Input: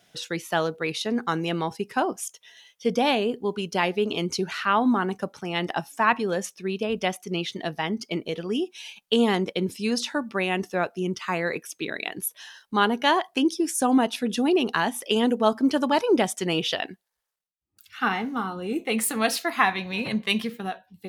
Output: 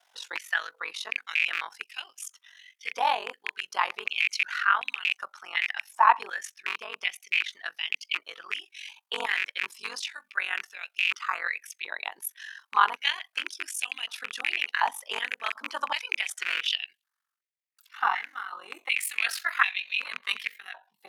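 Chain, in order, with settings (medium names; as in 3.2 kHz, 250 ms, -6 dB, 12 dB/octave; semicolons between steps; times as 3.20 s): rattle on loud lows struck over -29 dBFS, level -15 dBFS; ring modulator 23 Hz; step-sequenced high-pass 2.7 Hz 940–2700 Hz; trim -3.5 dB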